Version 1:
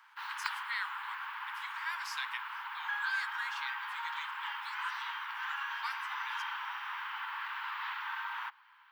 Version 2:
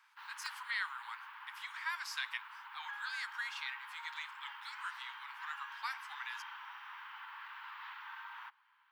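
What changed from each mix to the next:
background -9.5 dB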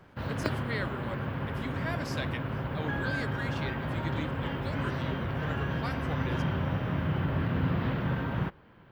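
background +8.0 dB; master: remove steep high-pass 860 Hz 96 dB/octave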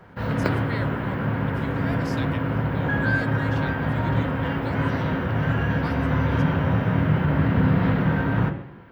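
background +5.5 dB; reverb: on, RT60 0.85 s

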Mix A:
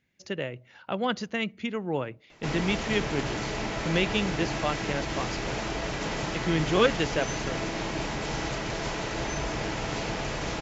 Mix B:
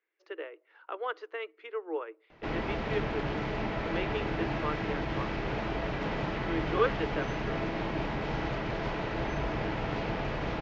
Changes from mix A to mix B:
speech: add rippled Chebyshev high-pass 310 Hz, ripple 9 dB; master: add distance through air 310 m

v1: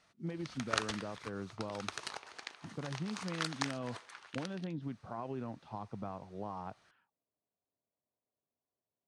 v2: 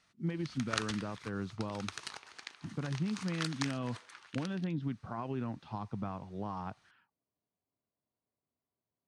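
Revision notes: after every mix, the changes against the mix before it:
speech +6.5 dB; master: add peaking EQ 580 Hz -7.5 dB 1.5 oct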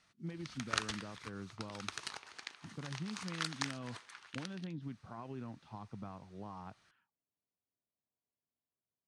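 speech -8.0 dB

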